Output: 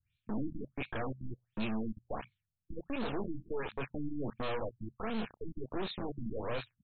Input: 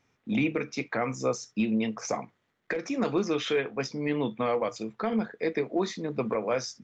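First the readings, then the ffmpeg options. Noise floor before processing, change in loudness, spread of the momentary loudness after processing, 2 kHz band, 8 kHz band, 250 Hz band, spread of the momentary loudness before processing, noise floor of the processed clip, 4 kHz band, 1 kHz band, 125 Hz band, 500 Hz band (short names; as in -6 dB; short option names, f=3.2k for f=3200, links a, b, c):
-75 dBFS, -10.0 dB, 7 LU, -10.0 dB, n/a, -9.5 dB, 6 LU, under -85 dBFS, -9.0 dB, -8.5 dB, -5.5 dB, -11.5 dB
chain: -filter_complex "[0:a]acrossover=split=110|2600[a][b][c];[b]acrusher=bits=3:dc=4:mix=0:aa=0.000001[d];[a][d][c]amix=inputs=3:normalize=0,equalizer=f=6.3k:w=5.4:g=6,bandreject=f=2k:w=7.1,acrossover=split=1700[e][f];[f]adelay=30[g];[e][g]amix=inputs=2:normalize=0,asoftclip=type=tanh:threshold=-29dB,afftfilt=real='re*lt(b*sr/1024,300*pow(4400/300,0.5+0.5*sin(2*PI*1.4*pts/sr)))':imag='im*lt(b*sr/1024,300*pow(4400/300,0.5+0.5*sin(2*PI*1.4*pts/sr)))':win_size=1024:overlap=0.75,volume=1dB"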